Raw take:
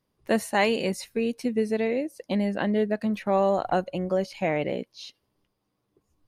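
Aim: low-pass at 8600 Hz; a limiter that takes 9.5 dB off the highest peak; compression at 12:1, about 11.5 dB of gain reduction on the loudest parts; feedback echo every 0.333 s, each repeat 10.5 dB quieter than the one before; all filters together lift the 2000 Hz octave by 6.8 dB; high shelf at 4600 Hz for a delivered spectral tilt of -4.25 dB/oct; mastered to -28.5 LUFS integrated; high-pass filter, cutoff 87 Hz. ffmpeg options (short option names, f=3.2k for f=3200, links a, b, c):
-af "highpass=87,lowpass=8.6k,equalizer=f=2k:t=o:g=8.5,highshelf=f=4.6k:g=-3.5,acompressor=threshold=-26dB:ratio=12,alimiter=limit=-24dB:level=0:latency=1,aecho=1:1:333|666|999:0.299|0.0896|0.0269,volume=5.5dB"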